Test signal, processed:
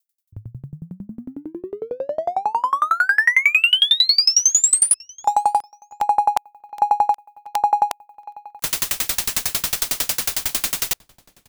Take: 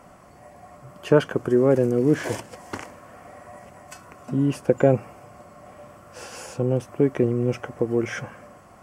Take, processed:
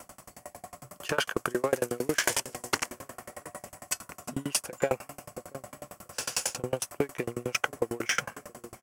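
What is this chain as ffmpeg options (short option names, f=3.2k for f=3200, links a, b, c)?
-filter_complex "[0:a]asplit=2[a][b];[b]adelay=680,lowpass=f=3.1k:p=1,volume=-23dB,asplit=2[c][d];[d]adelay=680,lowpass=f=3.1k:p=1,volume=0.37[e];[a][c][e]amix=inputs=3:normalize=0,acrossover=split=590|2600[f][g][h];[f]acompressor=threshold=-32dB:ratio=5[i];[i][g][h]amix=inputs=3:normalize=0,crystalizer=i=9:c=0,asplit=2[j][k];[k]adynamicsmooth=sensitivity=6:basefreq=660,volume=-2dB[l];[j][l]amix=inputs=2:normalize=0,alimiter=level_in=3dB:limit=-1dB:release=50:level=0:latency=1,aeval=exprs='val(0)*pow(10,-31*if(lt(mod(11*n/s,1),2*abs(11)/1000),1-mod(11*n/s,1)/(2*abs(11)/1000),(mod(11*n/s,1)-2*abs(11)/1000)/(1-2*abs(11)/1000))/20)':c=same,volume=-3.5dB"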